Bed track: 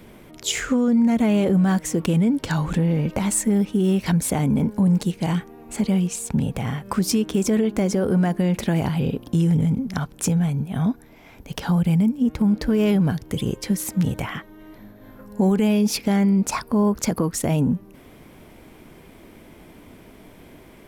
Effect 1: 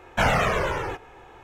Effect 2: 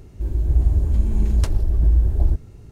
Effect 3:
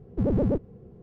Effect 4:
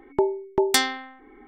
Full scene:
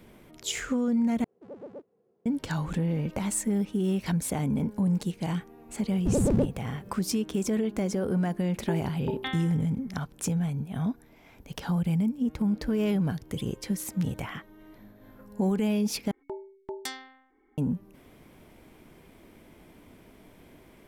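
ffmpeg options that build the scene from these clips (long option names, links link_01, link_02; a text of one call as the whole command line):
ffmpeg -i bed.wav -i cue0.wav -i cue1.wav -i cue2.wav -i cue3.wav -filter_complex "[3:a]asplit=2[link_01][link_02];[4:a]asplit=2[link_03][link_04];[0:a]volume=-7.5dB[link_05];[link_01]highpass=440[link_06];[link_02]aemphasis=mode=production:type=75kf[link_07];[link_03]aresample=8000,aresample=44100[link_08];[link_05]asplit=3[link_09][link_10][link_11];[link_09]atrim=end=1.244[link_12];[link_06]atrim=end=1.02,asetpts=PTS-STARTPTS,volume=-13dB[link_13];[link_10]atrim=start=2.256:end=16.114[link_14];[link_04]atrim=end=1.47,asetpts=PTS-STARTPTS,volume=-16.5dB[link_15];[link_11]atrim=start=17.576[link_16];[link_07]atrim=end=1.02,asetpts=PTS-STARTPTS,volume=-0.5dB,afade=type=in:duration=0.004:curve=hsin,afade=type=out:start_time=1.016:duration=0.004:curve=hsin,adelay=5880[link_17];[link_08]atrim=end=1.47,asetpts=PTS-STARTPTS,volume=-12dB,afade=type=in:duration=0.004:curve=hsin,afade=type=out:start_time=1.466:duration=0.004:curve=hsin,adelay=374850S[link_18];[link_12][link_13]acrossfade=duration=0.004:curve1=hsin:curve2=hsin[link_19];[link_19][link_14]acrossfade=duration=0.004:curve1=hsin:curve2=hsin[link_20];[link_20][link_15]acrossfade=duration=0.004:curve1=hsin:curve2=hsin[link_21];[link_21][link_16]acrossfade=duration=0.004:curve1=hsin:curve2=hsin[link_22];[link_22][link_17][link_18]amix=inputs=3:normalize=0" out.wav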